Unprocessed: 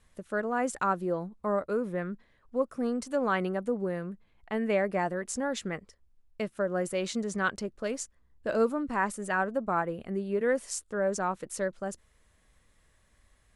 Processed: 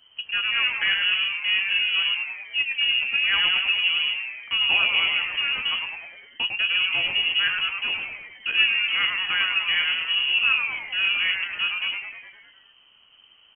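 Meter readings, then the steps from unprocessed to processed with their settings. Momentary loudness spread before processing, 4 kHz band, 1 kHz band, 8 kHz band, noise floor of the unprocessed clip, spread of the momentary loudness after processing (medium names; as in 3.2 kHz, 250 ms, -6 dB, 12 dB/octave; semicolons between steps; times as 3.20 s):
10 LU, +28.5 dB, -4.0 dB, under -40 dB, -67 dBFS, 8 LU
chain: CVSD coder 32 kbps; peaking EQ 130 Hz +14 dB 1.3 oct; frequency-shifting echo 102 ms, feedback 58%, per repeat +140 Hz, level -5.5 dB; frequency inversion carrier 3.1 kHz; flange 0.47 Hz, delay 8.6 ms, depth 5.5 ms, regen +72%; trim +7 dB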